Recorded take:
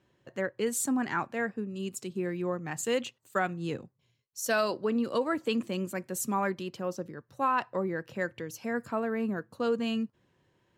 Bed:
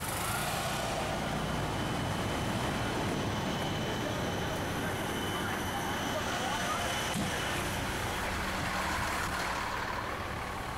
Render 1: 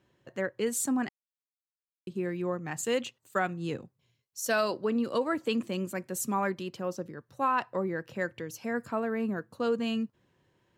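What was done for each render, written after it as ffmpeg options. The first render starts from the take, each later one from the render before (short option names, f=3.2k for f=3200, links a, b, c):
-filter_complex "[0:a]asplit=3[a][b][c];[a]atrim=end=1.09,asetpts=PTS-STARTPTS,afade=t=out:st=1.086:d=0.004:c=hsin[d];[b]atrim=start=1.09:end=2.07,asetpts=PTS-STARTPTS,volume=0[e];[c]atrim=start=2.07,asetpts=PTS-STARTPTS,afade=t=in:d=0.004:c=hsin[f];[d][e][f]concat=n=3:v=0:a=1"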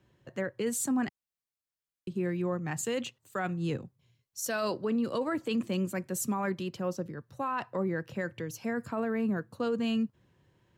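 -filter_complex "[0:a]acrossover=split=170|2400[a][b][c];[a]acontrast=77[d];[d][b][c]amix=inputs=3:normalize=0,alimiter=limit=-23dB:level=0:latency=1:release=16"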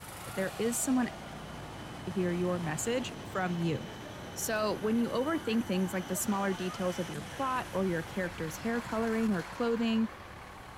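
-filter_complex "[1:a]volume=-10dB[a];[0:a][a]amix=inputs=2:normalize=0"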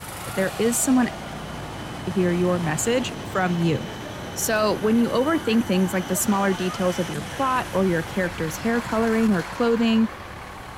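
-af "volume=10dB"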